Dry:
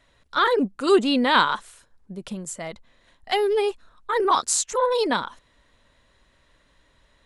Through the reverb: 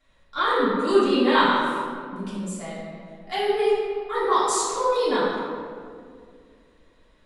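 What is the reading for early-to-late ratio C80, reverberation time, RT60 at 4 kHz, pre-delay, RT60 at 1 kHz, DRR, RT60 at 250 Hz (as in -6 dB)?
0.5 dB, 2.2 s, 1.1 s, 3 ms, 1.9 s, -11.0 dB, 2.9 s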